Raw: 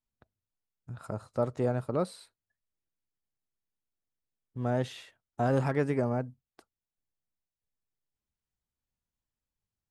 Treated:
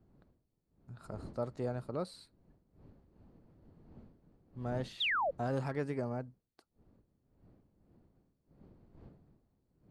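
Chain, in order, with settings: wind noise 240 Hz -50 dBFS; bell 4400 Hz +9.5 dB 0.23 oct; painted sound fall, 5–5.31, 500–4000 Hz -24 dBFS; gain -8 dB

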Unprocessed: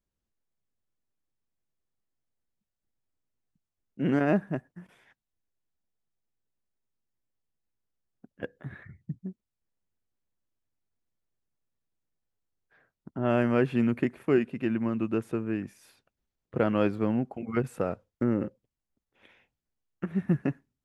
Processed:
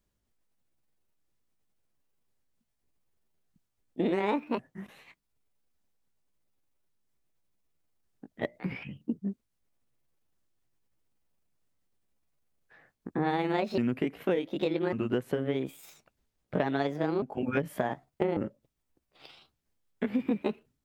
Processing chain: repeated pitch sweeps +8 st, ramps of 1.148 s; compressor, threshold -33 dBFS, peak gain reduction 13 dB; gain +7.5 dB

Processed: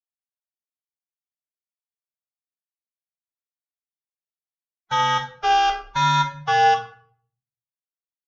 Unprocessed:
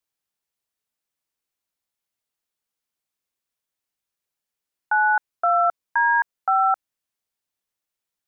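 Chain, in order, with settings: gate with hold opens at -17 dBFS; HPF 520 Hz 24 dB/oct; low-pass opened by the level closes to 970 Hz, open at -17 dBFS; hard clip -21.5 dBFS, distortion -9 dB; downsampling 22050 Hz; formant-preserving pitch shift -9 st; shoebox room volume 61 m³, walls mixed, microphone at 0.55 m; phaser 0.6 Hz, delay 4 ms, feedback 20%; gain +2 dB

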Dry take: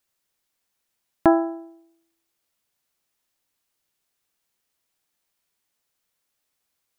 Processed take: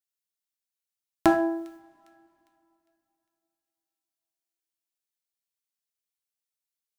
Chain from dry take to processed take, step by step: de-hum 82.56 Hz, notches 39; gate -46 dBFS, range -20 dB; high shelf 2300 Hz +10.5 dB; thin delay 0.404 s, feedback 38%, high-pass 2200 Hz, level -24 dB; on a send at -5 dB: reverb, pre-delay 3 ms; on the sum: gain -3.5 dB

